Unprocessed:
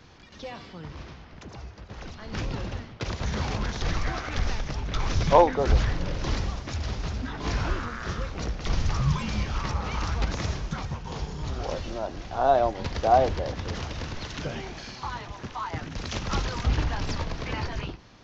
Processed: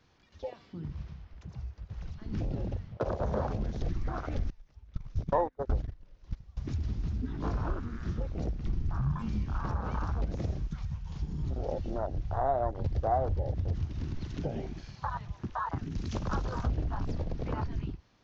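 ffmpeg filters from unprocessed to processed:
-filter_complex "[0:a]asettb=1/sr,asplit=3[a][b][c];[a]atrim=end=2.924[d];[b]atrim=start=2.92:end=3.47,asetpts=PTS-STARTPTS,afade=t=in:d=0.004:c=qsin,afade=t=out:st=0.546:d=0.004:c=qsin,equalizer=f=580:w=1.5:g=13[e];[c]atrim=start=3.466[f];[d][e]acrossfade=d=0.004:c1=hsin:c2=qsin[g];[g][f]acrossfade=d=0.004:c1=qsin:c2=hsin,asettb=1/sr,asplit=3[h][i][j];[h]atrim=end=4.504[k];[i]atrim=start=4.5:end=6.57,asetpts=PTS-STARTPTS,afade=t=in:d=0.004:c=qsin,afade=t=out:st=2.066:d=0.004:c=qsin,agate=range=-21dB:threshold=-23dB:ratio=16:release=100:detection=peak[l];[j]atrim=start=6.566[m];[k][l]acrossfade=d=0.004:c1=hsin:c2=qsin[n];[n][m]acrossfade=d=0.004:c1=qsin:c2=hsin,asettb=1/sr,asplit=3[o][p][q];[o]atrim=end=8.604[r];[p]atrim=start=8.6:end=9.19,asetpts=PTS-STARTPTS,afade=t=in:d=0.004:c=qsin,afade=t=out:st=0.586:d=0.004:c=qsin,highshelf=f=3.3k:g=-7[s];[q]atrim=start=9.186[t];[r][s]acrossfade=d=0.004:c1=hsin:c2=qsin[u];[u][t]acrossfade=d=0.004:c1=qsin:c2=hsin,asettb=1/sr,asplit=3[v][w][x];[v]atrim=end=10.674[y];[w]atrim=start=10.67:end=11.23,asetpts=PTS-STARTPTS,afade=t=in:d=0.004:c=qsin,afade=t=out:st=0.556:d=0.004:c=qsin,equalizer=f=310:t=o:w=2.6:g=-10[z];[x]atrim=start=11.226[aa];[y][z]acrossfade=d=0.004:c1=hsin:c2=qsin[ab];[ab][aa]acrossfade=d=0.004:c1=qsin:c2=hsin,asettb=1/sr,asplit=3[ac][ad][ae];[ac]atrim=end=11.964[af];[ad]atrim=start=11.96:end=13.86,asetpts=PTS-STARTPTS,afade=t=in:d=0.004:c=qsin,afade=t=out:st=1.896:d=0.004:c=qsin,lowshelf=f=150:t=q:w=1.5:g=6.5[ag];[ae]atrim=start=13.856[ah];[af][ag]acrossfade=d=0.004:c1=hsin:c2=qsin[ai];[ai][ah]acrossfade=d=0.004:c1=qsin:c2=hsin,asettb=1/sr,asplit=3[aj][ak][al];[aj]atrim=end=15.784[am];[ak]atrim=start=15.78:end=16.72,asetpts=PTS-STARTPTS,afade=t=in:d=0.004:c=qsin,afade=t=out:st=0.936:d=0.004:c=qsin,highshelf=f=4.1k:g=6.5[an];[al]atrim=start=16.716[ao];[am][an]acrossfade=d=0.004:c1=hsin:c2=qsin[ap];[ap][ao]acrossfade=d=0.004:c1=qsin:c2=hsin,afwtdn=0.0355,acompressor=threshold=-33dB:ratio=2.5,volume=2.5dB"

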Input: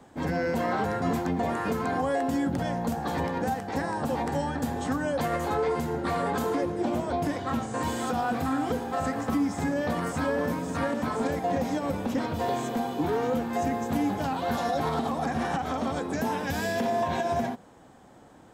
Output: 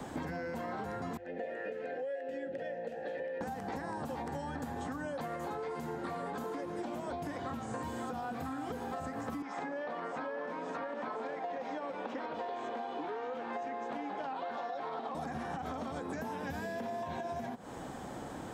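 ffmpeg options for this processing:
-filter_complex "[0:a]asettb=1/sr,asplit=3[a][b][c];[a]atrim=end=1.174[d];[b]atrim=start=1.17:end=3.41,asetpts=PTS-STARTPTS,afade=t=in:d=0.004:c=qsin,afade=t=out:st=2.236:d=0.004:c=qsin,asplit=3[e][f][g];[e]bandpass=f=530:t=q:w=8,volume=0dB[h];[f]bandpass=f=1.84k:t=q:w=8,volume=-6dB[i];[g]bandpass=f=2.48k:t=q:w=8,volume=-9dB[j];[h][i][j]amix=inputs=3:normalize=0[k];[c]atrim=start=3.406[l];[d][k]acrossfade=d=0.004:c1=hsin:c2=qsin[m];[m][l]acrossfade=d=0.004:c1=qsin:c2=hsin,asettb=1/sr,asplit=3[n][o][p];[n]atrim=end=5.144[q];[o]atrim=start=5.14:end=7.13,asetpts=PTS-STARTPTS,afade=t=in:d=0.004:c=qsin,afade=t=out:st=1.986:d=0.004:c=qsin,equalizer=f=75:w=1.5:g=-9[r];[p]atrim=start=7.126[s];[q][r]acrossfade=d=0.004:c1=hsin:c2=qsin[t];[t][s]acrossfade=d=0.004:c1=qsin:c2=hsin,asettb=1/sr,asplit=3[u][v][w];[u]atrim=end=9.424[x];[v]atrim=start=9.42:end=15.15,asetpts=PTS-STARTPTS,afade=t=in:d=0.004:c=qsin,afade=t=out:st=5.726:d=0.004:c=qsin,highpass=450,lowpass=3.3k[y];[w]atrim=start=15.146[z];[x][y]acrossfade=d=0.004:c1=hsin:c2=qsin[aa];[aa][z]acrossfade=d=0.004:c1=qsin:c2=hsin,acrossover=split=860|1900[ab][ac][ad];[ab]acompressor=threshold=-38dB:ratio=4[ae];[ac]acompressor=threshold=-45dB:ratio=4[af];[ad]acompressor=threshold=-56dB:ratio=4[ag];[ae][af][ag]amix=inputs=3:normalize=0,bandreject=f=50:t=h:w=6,bandreject=f=100:t=h:w=6,acompressor=threshold=-47dB:ratio=6,volume=10dB"

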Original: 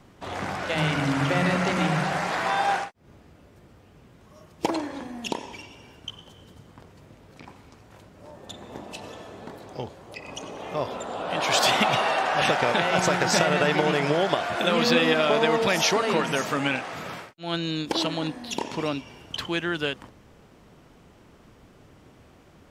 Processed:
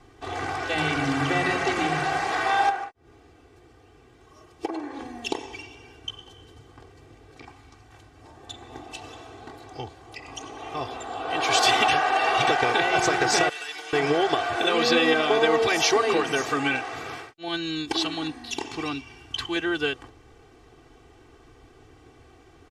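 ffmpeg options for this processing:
-filter_complex "[0:a]asettb=1/sr,asplit=3[a][b][c];[a]atrim=end=2.694[d];[b]atrim=start=2.69:end=4.99,asetpts=PTS-STARTPTS,afade=t=in:d=0.004:c=qsin,afade=t=out:st=2.296:d=0.004:c=qsin,acrossover=split=200|2200[e][f][g];[e]acompressor=threshold=-57dB:ratio=4[h];[f]acompressor=threshold=-29dB:ratio=4[i];[g]acompressor=threshold=-53dB:ratio=4[j];[h][i][j]amix=inputs=3:normalize=0[k];[c]atrim=start=4.986[l];[d][k]acrossfade=d=0.004:c1=hsin:c2=qsin[m];[m][l]acrossfade=d=0.004:c1=qsin:c2=hsin,asettb=1/sr,asplit=3[n][o][p];[n]atrim=end=7.474[q];[o]atrim=start=7.47:end=11.25,asetpts=PTS-STARTPTS,afade=t=in:d=0.004:c=qsin,afade=t=out:st=3.776:d=0.004:c=qsin,equalizer=f=440:w=1.9:g=-6.5[r];[p]atrim=start=11.246[s];[q][r]acrossfade=d=0.004:c1=hsin:c2=qsin[t];[t][s]acrossfade=d=0.004:c1=qsin:c2=hsin,asettb=1/sr,asplit=3[u][v][w];[u]atrim=end=13.494[x];[v]atrim=start=13.49:end=13.93,asetpts=PTS-STARTPTS,afade=t=in:d=0.004:c=qsin,afade=t=out:st=0.436:d=0.004:c=qsin,aderivative[y];[w]atrim=start=13.926[z];[x][y]acrossfade=d=0.004:c1=hsin:c2=qsin[aa];[aa][z]acrossfade=d=0.004:c1=qsin:c2=hsin,asettb=1/sr,asplit=3[ab][ac][ad];[ab]atrim=end=17.484[ae];[ac]atrim=start=17.48:end=19.56,asetpts=PTS-STARTPTS,afade=t=in:d=0.004:c=qsin,afade=t=out:st=2.076:d=0.004:c=qsin,equalizer=f=520:w=1.6:g=-9[af];[ad]atrim=start=19.556[ag];[ae][af]acrossfade=d=0.004:c1=hsin:c2=qsin[ah];[ah][ag]acrossfade=d=0.004:c1=qsin:c2=hsin,asplit=3[ai][aj][ak];[ai]atrim=end=11.882[al];[aj]atrim=start=11.878:end=12.472,asetpts=PTS-STARTPTS,areverse[am];[ak]atrim=start=12.468[an];[al][am]acrossfade=d=0.004:c1=hsin:c2=hsin[ao];[ao][an]acrossfade=d=0.004:c1=hsin:c2=hsin,lowpass=10k,aecho=1:1:2.6:0.99,volume=-2dB"

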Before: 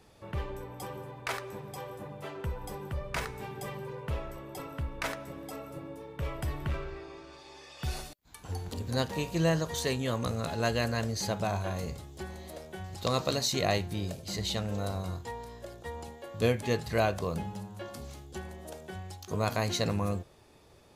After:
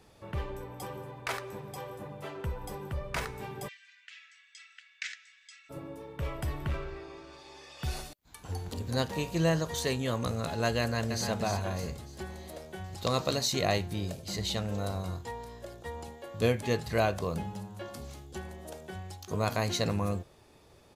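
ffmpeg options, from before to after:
-filter_complex "[0:a]asplit=3[a][b][c];[a]afade=t=out:st=3.67:d=0.02[d];[b]asuperpass=centerf=3700:order=12:qfactor=0.63,afade=t=in:st=3.67:d=0.02,afade=t=out:st=5.69:d=0.02[e];[c]afade=t=in:st=5.69:d=0.02[f];[d][e][f]amix=inputs=3:normalize=0,asplit=2[g][h];[h]afade=t=in:st=10.8:d=0.01,afade=t=out:st=11.29:d=0.01,aecho=0:1:300|600|900|1200|1500:0.473151|0.189261|0.0757042|0.0302817|0.0121127[i];[g][i]amix=inputs=2:normalize=0"

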